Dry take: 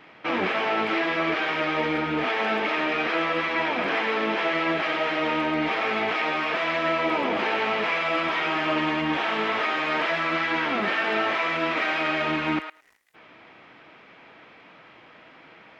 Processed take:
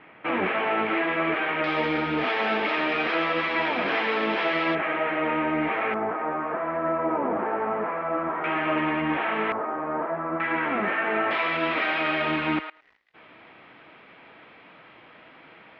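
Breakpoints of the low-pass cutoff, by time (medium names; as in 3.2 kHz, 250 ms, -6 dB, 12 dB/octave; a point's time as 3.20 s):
low-pass 24 dB/octave
2.8 kHz
from 1.64 s 5 kHz
from 4.75 s 2.4 kHz
from 5.94 s 1.4 kHz
from 8.44 s 2.5 kHz
from 9.52 s 1.2 kHz
from 10.40 s 2.3 kHz
from 11.31 s 4 kHz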